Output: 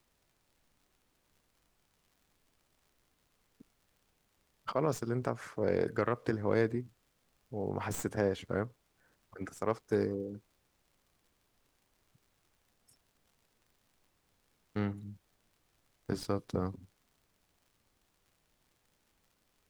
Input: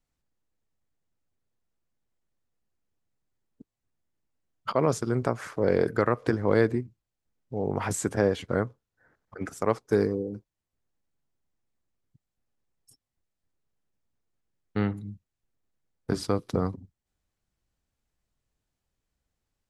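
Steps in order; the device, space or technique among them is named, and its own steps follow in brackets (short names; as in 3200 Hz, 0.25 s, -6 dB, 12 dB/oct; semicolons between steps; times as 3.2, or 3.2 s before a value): record under a worn stylus (tracing distortion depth 0.071 ms; crackle; pink noise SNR 36 dB); gain -7 dB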